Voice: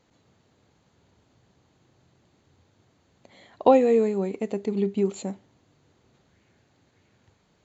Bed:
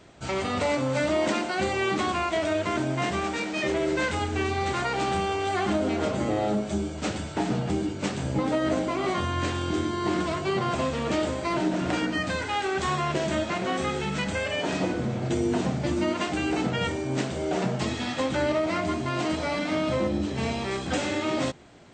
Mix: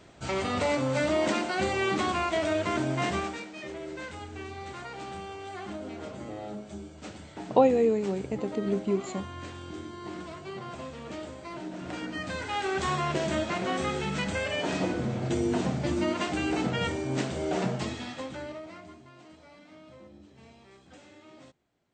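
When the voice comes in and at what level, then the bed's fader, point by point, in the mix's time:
3.90 s, −3.5 dB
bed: 0:03.17 −1.5 dB
0:03.51 −13 dB
0:11.67 −13 dB
0:12.69 −2 dB
0:17.67 −2 dB
0:19.18 −25 dB

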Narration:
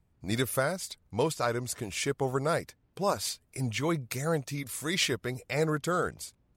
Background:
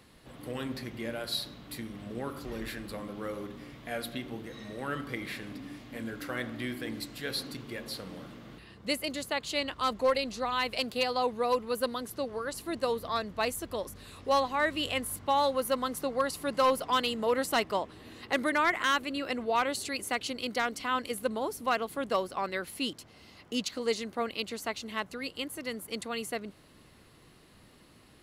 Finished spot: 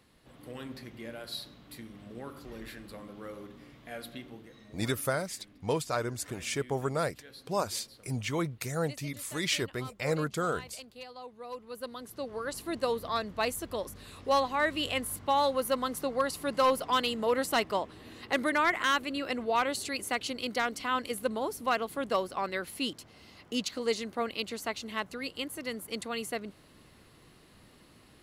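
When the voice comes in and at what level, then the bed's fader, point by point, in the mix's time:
4.50 s, −2.0 dB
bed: 0:04.20 −6 dB
0:05.08 −16.5 dB
0:11.32 −16.5 dB
0:12.48 0 dB

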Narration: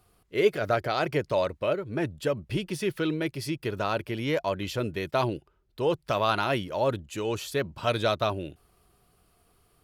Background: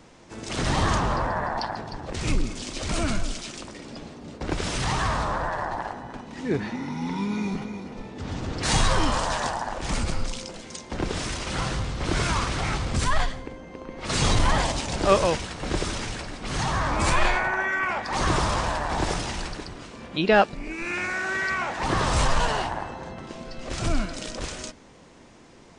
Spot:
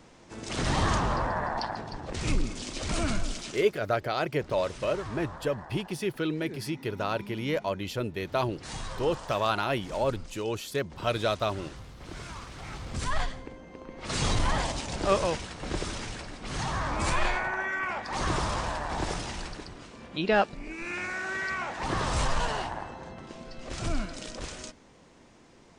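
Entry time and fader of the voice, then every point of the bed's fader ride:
3.20 s, −2.0 dB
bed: 0:03.54 −3 dB
0:03.79 −16.5 dB
0:12.52 −16.5 dB
0:13.17 −5.5 dB

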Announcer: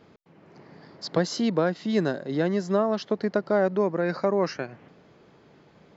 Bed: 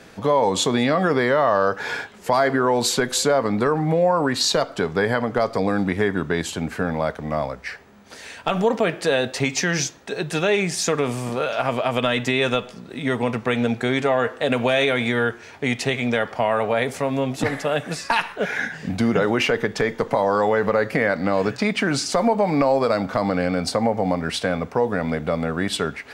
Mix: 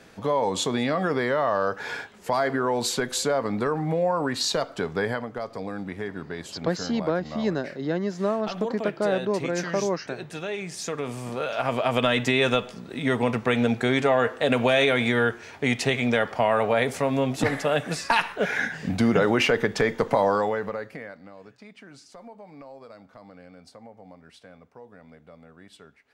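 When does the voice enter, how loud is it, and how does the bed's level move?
5.50 s, −2.0 dB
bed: 0:05.08 −5.5 dB
0:05.31 −12 dB
0:10.61 −12 dB
0:11.94 −1 dB
0:20.26 −1 dB
0:21.34 −26 dB

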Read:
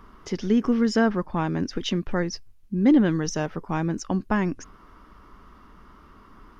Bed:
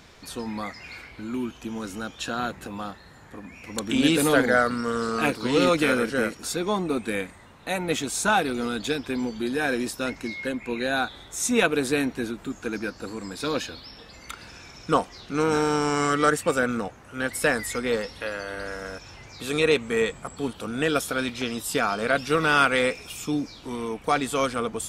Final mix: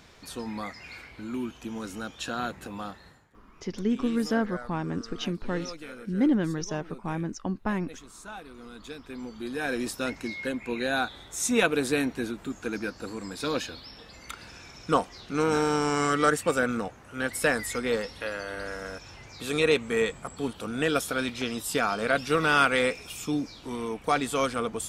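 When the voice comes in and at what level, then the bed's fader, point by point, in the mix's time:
3.35 s, −5.5 dB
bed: 0:03.08 −3 dB
0:03.34 −20.5 dB
0:08.44 −20.5 dB
0:09.90 −2 dB

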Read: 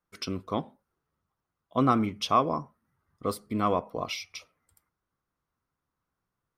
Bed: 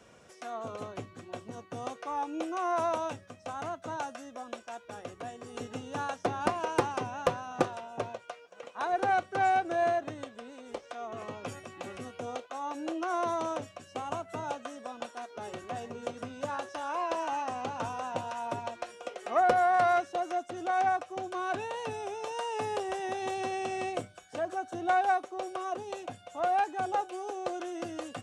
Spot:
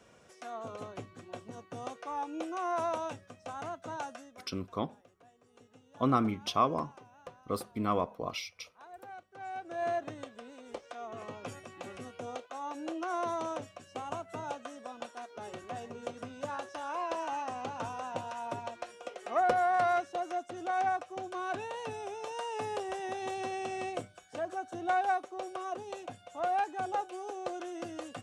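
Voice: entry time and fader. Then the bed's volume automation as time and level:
4.25 s, −4.0 dB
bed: 0:04.16 −3 dB
0:04.59 −20.5 dB
0:09.32 −20.5 dB
0:09.95 −3 dB

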